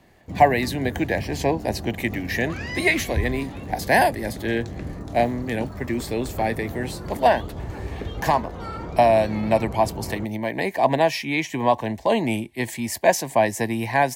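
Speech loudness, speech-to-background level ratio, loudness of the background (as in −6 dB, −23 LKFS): −23.0 LKFS, 11.0 dB, −34.0 LKFS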